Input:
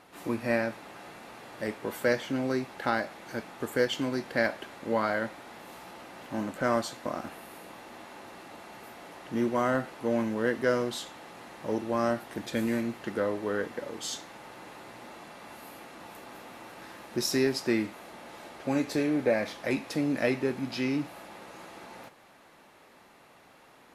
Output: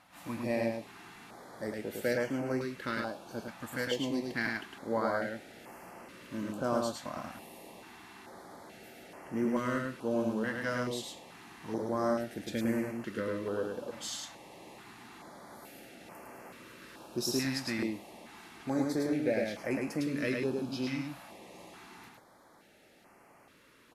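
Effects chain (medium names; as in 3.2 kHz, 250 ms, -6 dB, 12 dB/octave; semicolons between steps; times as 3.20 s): delay 106 ms -3 dB; step-sequenced notch 2.3 Hz 410–3700 Hz; trim -4 dB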